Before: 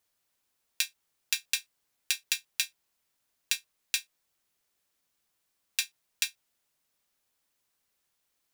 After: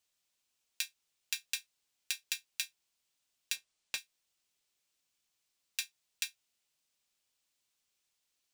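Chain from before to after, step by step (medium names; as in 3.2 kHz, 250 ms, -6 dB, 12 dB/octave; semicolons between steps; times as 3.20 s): 3.56–3.98 s: median filter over 3 samples; band noise 2.3–8.9 kHz -78 dBFS; trim -7 dB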